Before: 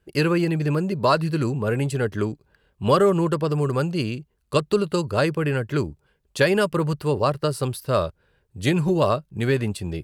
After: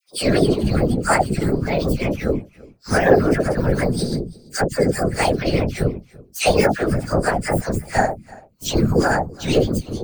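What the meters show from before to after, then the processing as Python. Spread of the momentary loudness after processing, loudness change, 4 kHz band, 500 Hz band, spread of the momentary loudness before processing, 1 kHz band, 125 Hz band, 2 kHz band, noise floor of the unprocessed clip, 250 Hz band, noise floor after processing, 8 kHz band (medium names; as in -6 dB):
8 LU, +3.0 dB, +3.5 dB, +2.5 dB, 8 LU, +4.0 dB, +1.5 dB, +5.0 dB, -69 dBFS, +3.5 dB, -52 dBFS, +9.0 dB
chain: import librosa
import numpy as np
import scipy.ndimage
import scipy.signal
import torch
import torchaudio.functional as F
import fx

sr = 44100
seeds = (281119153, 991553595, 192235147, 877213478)

p1 = fx.partial_stretch(x, sr, pct=123)
p2 = scipy.signal.sosfilt(scipy.signal.butter(2, 100.0, 'highpass', fs=sr, output='sos'), p1)
p3 = fx.high_shelf(p2, sr, hz=8900.0, db=4.5)
p4 = fx.hum_notches(p3, sr, base_hz=50, count=3)
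p5 = fx.whisperise(p4, sr, seeds[0])
p6 = fx.dispersion(p5, sr, late='lows', ms=79.0, hz=1100.0)
p7 = p6 + fx.echo_single(p6, sr, ms=336, db=-23.0, dry=0)
y = F.gain(torch.from_numpy(p7), 6.5).numpy()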